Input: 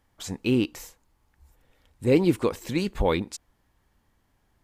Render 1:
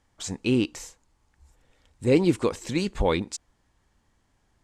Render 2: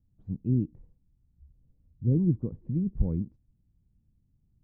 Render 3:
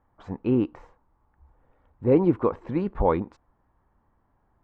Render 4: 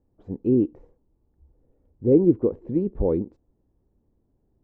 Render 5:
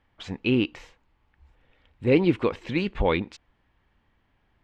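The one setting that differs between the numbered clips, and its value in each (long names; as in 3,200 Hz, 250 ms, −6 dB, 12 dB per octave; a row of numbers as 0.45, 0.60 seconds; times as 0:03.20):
low-pass with resonance, frequency: 7,800, 160, 1,100, 410, 2,800 Hertz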